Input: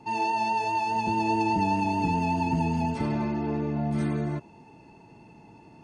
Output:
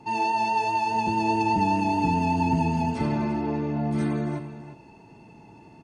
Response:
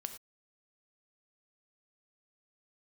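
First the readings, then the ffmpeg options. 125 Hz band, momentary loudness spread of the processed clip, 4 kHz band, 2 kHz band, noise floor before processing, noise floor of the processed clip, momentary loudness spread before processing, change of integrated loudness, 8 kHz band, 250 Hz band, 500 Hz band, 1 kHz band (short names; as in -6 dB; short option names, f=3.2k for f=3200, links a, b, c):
+1.5 dB, 5 LU, +2.0 dB, +2.0 dB, -52 dBFS, -50 dBFS, 4 LU, +2.0 dB, +2.0 dB, +2.0 dB, +1.5 dB, +2.5 dB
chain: -filter_complex "[0:a]aecho=1:1:344:0.211,asplit=2[a][b];[1:a]atrim=start_sample=2205[c];[b][c]afir=irnorm=-1:irlink=0,volume=-0.5dB[d];[a][d]amix=inputs=2:normalize=0,volume=-3dB"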